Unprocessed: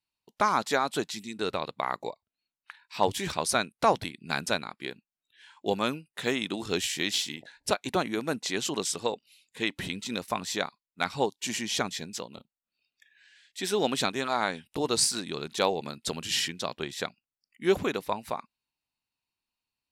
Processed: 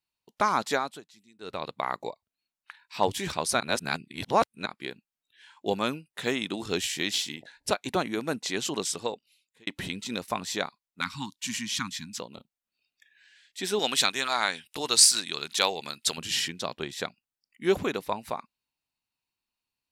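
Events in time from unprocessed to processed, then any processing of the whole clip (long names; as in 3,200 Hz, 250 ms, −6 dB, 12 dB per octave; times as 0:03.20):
0:00.73–0:01.67: duck −20 dB, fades 0.28 s
0:03.60–0:04.66: reverse
0:08.92–0:09.67: fade out
0:11.01–0:12.20: Chebyshev band-stop filter 270–1,000 Hz, order 3
0:13.79–0:16.18: tilt shelving filter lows −8 dB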